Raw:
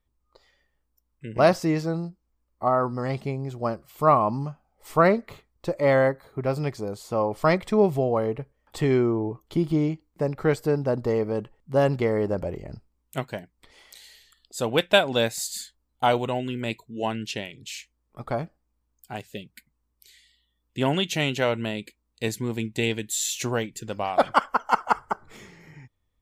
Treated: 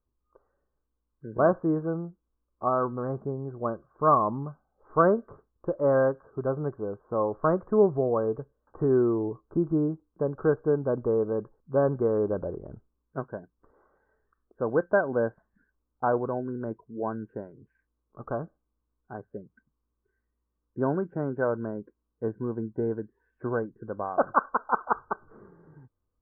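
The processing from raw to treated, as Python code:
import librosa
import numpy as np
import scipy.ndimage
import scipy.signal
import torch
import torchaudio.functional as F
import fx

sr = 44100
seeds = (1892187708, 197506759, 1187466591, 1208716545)

y = scipy.signal.sosfilt(scipy.signal.cheby1(6, 6, 1600.0, 'lowpass', fs=sr, output='sos'), x)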